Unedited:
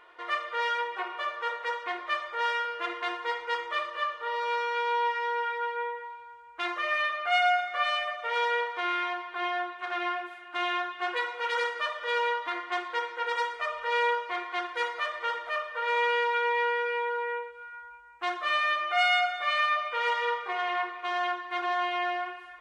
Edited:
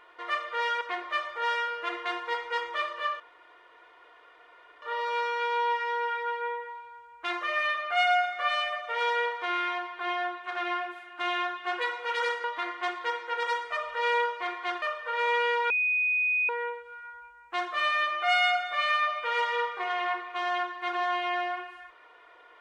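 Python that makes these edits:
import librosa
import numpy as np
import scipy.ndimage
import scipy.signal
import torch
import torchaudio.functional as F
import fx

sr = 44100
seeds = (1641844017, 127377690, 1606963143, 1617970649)

y = fx.edit(x, sr, fx.cut(start_s=0.81, length_s=0.97),
    fx.insert_room_tone(at_s=4.17, length_s=1.62),
    fx.cut(start_s=11.79, length_s=0.54),
    fx.cut(start_s=14.71, length_s=0.8),
    fx.bleep(start_s=16.39, length_s=0.79, hz=2490.0, db=-23.0), tone=tone)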